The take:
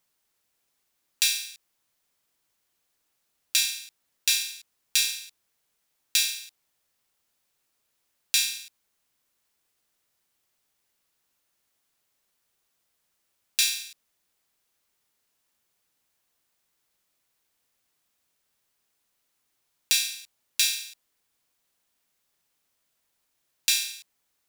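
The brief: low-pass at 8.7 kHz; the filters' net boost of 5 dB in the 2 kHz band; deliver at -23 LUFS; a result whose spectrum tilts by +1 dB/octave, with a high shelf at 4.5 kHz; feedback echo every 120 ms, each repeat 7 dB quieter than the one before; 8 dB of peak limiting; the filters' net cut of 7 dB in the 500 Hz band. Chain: low-pass 8.7 kHz; peaking EQ 500 Hz -8.5 dB; peaking EQ 2 kHz +6 dB; treble shelf 4.5 kHz +5 dB; peak limiter -10 dBFS; feedback delay 120 ms, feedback 45%, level -7 dB; trim +2 dB

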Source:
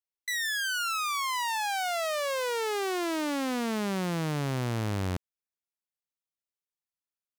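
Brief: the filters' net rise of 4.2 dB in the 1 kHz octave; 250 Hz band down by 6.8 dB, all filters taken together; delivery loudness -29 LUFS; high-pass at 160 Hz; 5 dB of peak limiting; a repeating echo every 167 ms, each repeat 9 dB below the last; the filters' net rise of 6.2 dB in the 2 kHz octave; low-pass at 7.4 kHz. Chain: high-pass 160 Hz; low-pass 7.4 kHz; peaking EQ 250 Hz -8.5 dB; peaking EQ 1 kHz +4 dB; peaking EQ 2 kHz +6.5 dB; peak limiter -21.5 dBFS; feedback delay 167 ms, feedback 35%, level -9 dB

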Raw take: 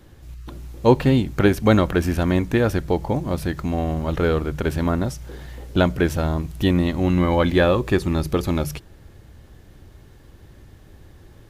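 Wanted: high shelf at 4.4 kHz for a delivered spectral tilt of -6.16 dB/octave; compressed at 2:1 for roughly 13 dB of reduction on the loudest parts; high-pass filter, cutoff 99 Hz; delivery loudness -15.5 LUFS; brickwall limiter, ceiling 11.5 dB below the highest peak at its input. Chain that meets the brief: high-pass 99 Hz; treble shelf 4.4 kHz -4.5 dB; compression 2:1, threshold -35 dBFS; trim +22 dB; peak limiter -3.5 dBFS

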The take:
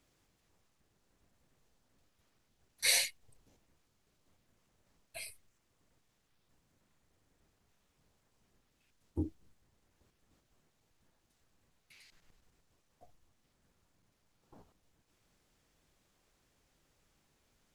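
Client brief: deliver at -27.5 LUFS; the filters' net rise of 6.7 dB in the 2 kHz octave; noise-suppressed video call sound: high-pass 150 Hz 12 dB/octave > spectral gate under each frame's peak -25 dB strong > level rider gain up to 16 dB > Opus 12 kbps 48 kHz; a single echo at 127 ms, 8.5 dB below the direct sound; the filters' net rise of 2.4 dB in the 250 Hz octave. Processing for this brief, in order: high-pass 150 Hz 12 dB/octave; peaking EQ 250 Hz +3.5 dB; peaking EQ 2 kHz +7.5 dB; delay 127 ms -8.5 dB; spectral gate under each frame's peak -25 dB strong; level rider gain up to 16 dB; trim +4 dB; Opus 12 kbps 48 kHz

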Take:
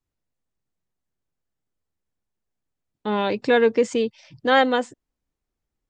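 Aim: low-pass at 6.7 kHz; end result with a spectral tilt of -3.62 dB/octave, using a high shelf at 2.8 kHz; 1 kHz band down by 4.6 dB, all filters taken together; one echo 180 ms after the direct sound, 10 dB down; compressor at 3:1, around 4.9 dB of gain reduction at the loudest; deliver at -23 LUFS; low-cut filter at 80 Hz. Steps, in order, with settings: high-pass 80 Hz; low-pass 6.7 kHz; peaking EQ 1 kHz -5.5 dB; treble shelf 2.8 kHz -7.5 dB; compression 3:1, threshold -21 dBFS; delay 180 ms -10 dB; trim +3.5 dB

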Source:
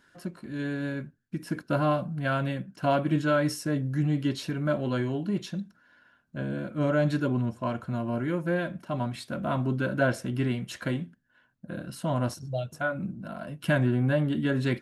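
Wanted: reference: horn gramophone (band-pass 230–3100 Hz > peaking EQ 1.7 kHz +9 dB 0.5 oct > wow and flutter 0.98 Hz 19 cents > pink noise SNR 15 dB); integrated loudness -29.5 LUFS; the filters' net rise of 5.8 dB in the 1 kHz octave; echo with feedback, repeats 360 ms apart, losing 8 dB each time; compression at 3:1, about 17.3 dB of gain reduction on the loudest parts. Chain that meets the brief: peaking EQ 1 kHz +6 dB; compression 3:1, threshold -42 dBFS; band-pass 230–3100 Hz; peaking EQ 1.7 kHz +9 dB 0.5 oct; feedback delay 360 ms, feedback 40%, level -8 dB; wow and flutter 0.98 Hz 19 cents; pink noise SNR 15 dB; trim +12 dB

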